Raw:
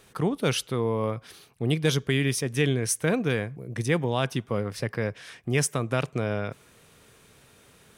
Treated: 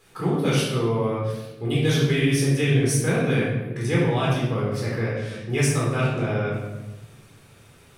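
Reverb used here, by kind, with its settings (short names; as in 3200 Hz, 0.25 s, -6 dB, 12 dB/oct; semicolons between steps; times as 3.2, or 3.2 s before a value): shoebox room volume 540 m³, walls mixed, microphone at 4 m; gain -6.5 dB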